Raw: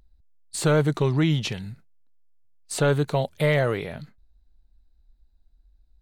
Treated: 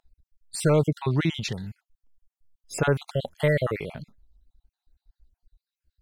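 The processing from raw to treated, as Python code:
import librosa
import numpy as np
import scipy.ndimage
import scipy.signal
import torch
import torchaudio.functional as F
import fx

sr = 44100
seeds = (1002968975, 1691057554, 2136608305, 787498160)

y = fx.spec_dropout(x, sr, seeds[0], share_pct=46)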